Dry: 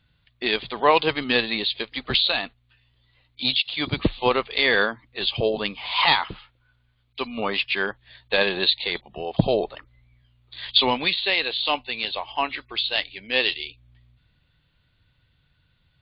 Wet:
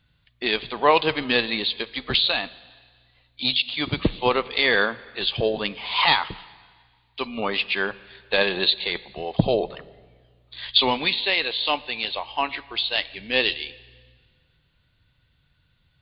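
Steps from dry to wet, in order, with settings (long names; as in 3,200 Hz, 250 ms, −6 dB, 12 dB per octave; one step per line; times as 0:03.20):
0:13.14–0:13.57: low-shelf EQ 290 Hz +6.5 dB
dense smooth reverb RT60 1.7 s, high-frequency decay 1×, DRR 18 dB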